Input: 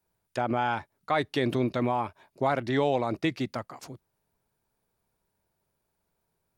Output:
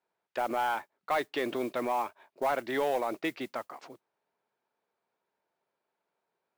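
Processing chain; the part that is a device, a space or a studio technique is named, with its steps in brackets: carbon microphone (band-pass 390–3200 Hz; saturation -20 dBFS, distortion -17 dB; modulation noise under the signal 23 dB)

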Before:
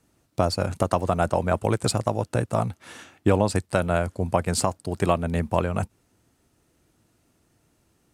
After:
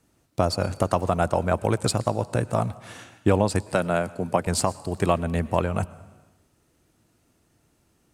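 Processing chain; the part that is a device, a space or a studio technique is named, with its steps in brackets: compressed reverb return (on a send at -13 dB: reverberation RT60 0.90 s, pre-delay 102 ms + compression 5:1, threshold -28 dBFS, peak gain reduction 11.5 dB); 3.74–4.47 s: on the sum: high-pass 120 Hz 24 dB/octave

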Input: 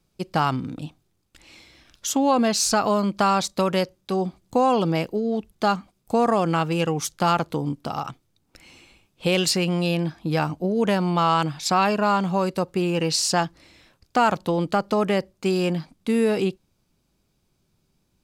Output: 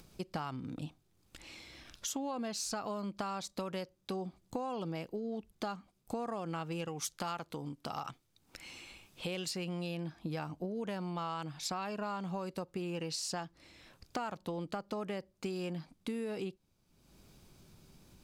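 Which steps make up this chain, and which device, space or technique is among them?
upward and downward compression (upward compressor, threshold -39 dBFS; compression 6:1, threshold -30 dBFS, peak gain reduction 14.5 dB); 6.88–9.27 s: tilt shelf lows -3 dB, about 760 Hz; trim -6 dB

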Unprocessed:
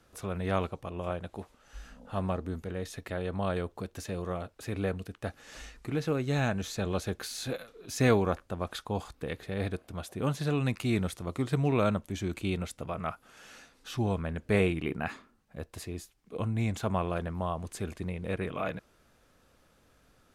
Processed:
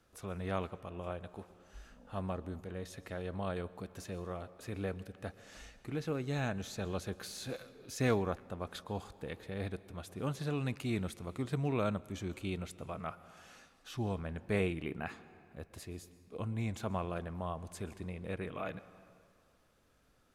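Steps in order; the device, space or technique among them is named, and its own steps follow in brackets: compressed reverb return (on a send at -14 dB: reverberation RT60 2.0 s, pre-delay 112 ms + compression, threshold -32 dBFS, peak gain reduction 12 dB); on the sum: trim -6.5 dB

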